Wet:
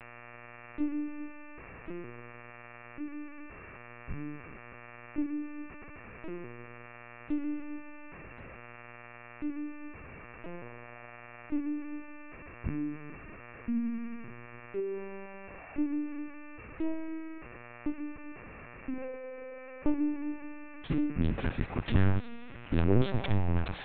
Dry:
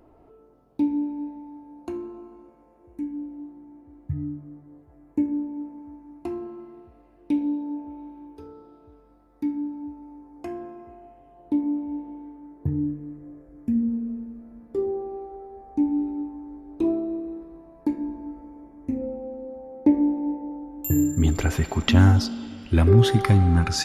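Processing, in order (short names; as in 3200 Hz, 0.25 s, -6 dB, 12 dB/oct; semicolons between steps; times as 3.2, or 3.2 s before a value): self-modulated delay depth 0.48 ms; buzz 120 Hz, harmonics 23, -41 dBFS 0 dB/oct; LPC vocoder at 8 kHz pitch kept; gain -8.5 dB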